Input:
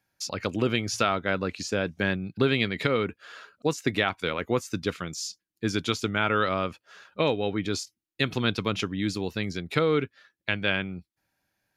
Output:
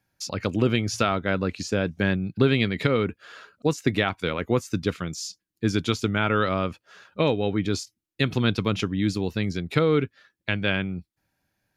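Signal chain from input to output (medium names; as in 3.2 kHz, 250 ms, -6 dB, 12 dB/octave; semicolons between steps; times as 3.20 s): bass shelf 310 Hz +7 dB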